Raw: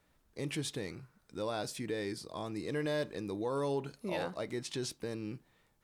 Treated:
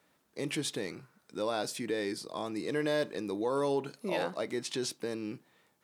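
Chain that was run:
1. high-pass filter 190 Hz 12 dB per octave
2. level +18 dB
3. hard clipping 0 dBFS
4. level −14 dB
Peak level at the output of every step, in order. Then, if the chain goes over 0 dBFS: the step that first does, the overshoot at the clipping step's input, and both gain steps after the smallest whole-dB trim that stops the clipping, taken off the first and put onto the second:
−22.0, −4.0, −4.0, −18.0 dBFS
no step passes full scale

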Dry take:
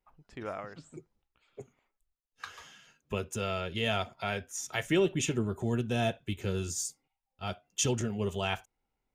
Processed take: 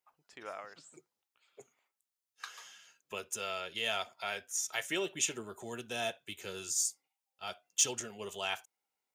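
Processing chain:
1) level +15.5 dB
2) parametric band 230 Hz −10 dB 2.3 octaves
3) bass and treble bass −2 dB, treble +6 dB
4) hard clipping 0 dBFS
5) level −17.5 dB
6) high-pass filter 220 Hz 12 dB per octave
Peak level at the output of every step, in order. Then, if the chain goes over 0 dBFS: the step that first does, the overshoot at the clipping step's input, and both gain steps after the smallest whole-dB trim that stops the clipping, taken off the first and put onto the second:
−0.5, −1.0, +3.0, 0.0, −17.5, −17.0 dBFS
step 3, 3.0 dB
step 1 +12.5 dB, step 5 −14.5 dB

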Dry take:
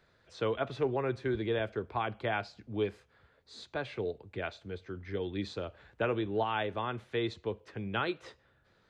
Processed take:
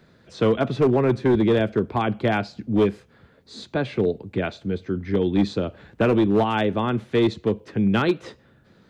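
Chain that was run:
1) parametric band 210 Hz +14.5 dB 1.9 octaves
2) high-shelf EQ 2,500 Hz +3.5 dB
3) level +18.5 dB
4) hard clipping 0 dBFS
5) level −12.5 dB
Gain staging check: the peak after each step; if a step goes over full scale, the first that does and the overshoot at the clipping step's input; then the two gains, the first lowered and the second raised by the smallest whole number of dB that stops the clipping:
−12.0, −12.0, +6.5, 0.0, −12.5 dBFS
step 3, 6.5 dB
step 3 +11.5 dB, step 5 −5.5 dB

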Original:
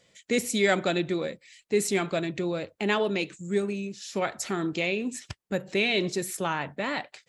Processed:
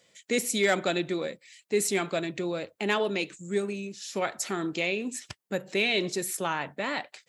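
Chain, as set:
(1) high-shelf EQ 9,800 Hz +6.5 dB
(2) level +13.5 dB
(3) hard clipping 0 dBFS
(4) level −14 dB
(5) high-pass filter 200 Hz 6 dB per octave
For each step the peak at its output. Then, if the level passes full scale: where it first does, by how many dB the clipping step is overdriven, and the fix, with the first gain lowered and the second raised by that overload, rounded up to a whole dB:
−9.5, +4.0, 0.0, −14.0, −12.5 dBFS
step 2, 4.0 dB
step 2 +9.5 dB, step 4 −10 dB

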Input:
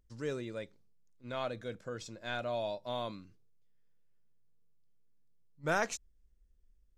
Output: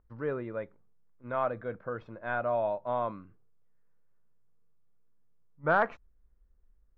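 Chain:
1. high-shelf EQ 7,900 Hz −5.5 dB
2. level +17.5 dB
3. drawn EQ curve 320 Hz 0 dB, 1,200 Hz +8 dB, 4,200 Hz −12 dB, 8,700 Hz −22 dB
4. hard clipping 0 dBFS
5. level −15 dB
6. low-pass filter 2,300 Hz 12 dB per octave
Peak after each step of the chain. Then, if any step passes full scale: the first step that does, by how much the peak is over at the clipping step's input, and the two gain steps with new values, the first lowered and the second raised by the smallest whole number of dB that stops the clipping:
−18.5, −1.0, +3.5, 0.0, −15.0, −14.5 dBFS
step 3, 3.5 dB
step 2 +13.5 dB, step 5 −11 dB

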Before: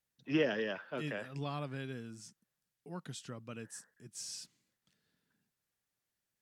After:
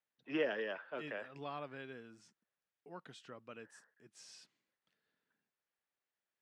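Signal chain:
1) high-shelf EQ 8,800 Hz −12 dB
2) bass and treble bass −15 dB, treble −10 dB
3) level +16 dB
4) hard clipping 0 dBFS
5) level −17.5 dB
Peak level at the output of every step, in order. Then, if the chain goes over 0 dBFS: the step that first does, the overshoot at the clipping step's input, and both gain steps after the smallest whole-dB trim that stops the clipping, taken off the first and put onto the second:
−19.0, −21.5, −5.5, −5.5, −23.0 dBFS
no step passes full scale

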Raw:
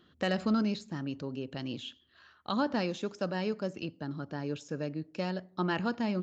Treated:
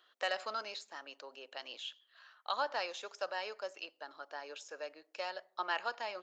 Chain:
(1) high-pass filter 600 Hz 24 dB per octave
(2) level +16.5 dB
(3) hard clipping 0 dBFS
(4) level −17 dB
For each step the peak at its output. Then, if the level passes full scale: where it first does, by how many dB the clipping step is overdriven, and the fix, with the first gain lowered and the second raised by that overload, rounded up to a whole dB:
−19.0, −2.5, −2.5, −19.5 dBFS
no step passes full scale

